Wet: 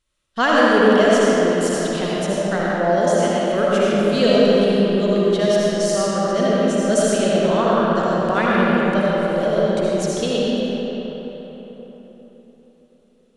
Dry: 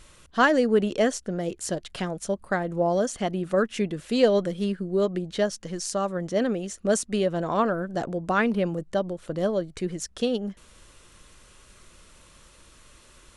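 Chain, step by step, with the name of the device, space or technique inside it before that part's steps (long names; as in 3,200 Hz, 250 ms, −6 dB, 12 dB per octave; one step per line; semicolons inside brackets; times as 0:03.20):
presence and air boost (parametric band 3,500 Hz +4.5 dB 0.96 octaves; high-shelf EQ 9,500 Hz +2.5 dB)
noise gate −41 dBFS, range −26 dB
0:03.08–0:03.48: high-pass filter 490 Hz
comb and all-pass reverb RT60 4.3 s, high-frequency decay 0.6×, pre-delay 35 ms, DRR −7 dB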